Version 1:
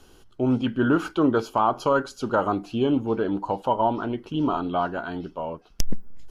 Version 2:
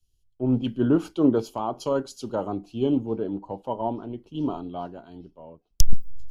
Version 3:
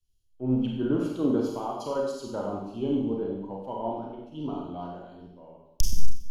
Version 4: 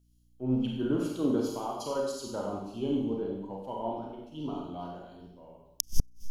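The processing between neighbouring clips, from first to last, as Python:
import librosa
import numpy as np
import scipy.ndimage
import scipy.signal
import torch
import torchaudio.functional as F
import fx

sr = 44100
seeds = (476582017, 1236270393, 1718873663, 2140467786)

y1 = fx.peak_eq(x, sr, hz=1500.0, db=-14.5, octaves=1.3)
y1 = fx.band_widen(y1, sr, depth_pct=100)
y1 = y1 * librosa.db_to_amplitude(-1.5)
y2 = fx.rev_schroeder(y1, sr, rt60_s=0.88, comb_ms=31, drr_db=-1.5)
y2 = y2 * librosa.db_to_amplitude(-7.0)
y3 = fx.high_shelf(y2, sr, hz=3900.0, db=10.0)
y3 = fx.gate_flip(y3, sr, shuts_db=-8.0, range_db=-37)
y3 = fx.add_hum(y3, sr, base_hz=60, snr_db=35)
y3 = y3 * librosa.db_to_amplitude(-3.0)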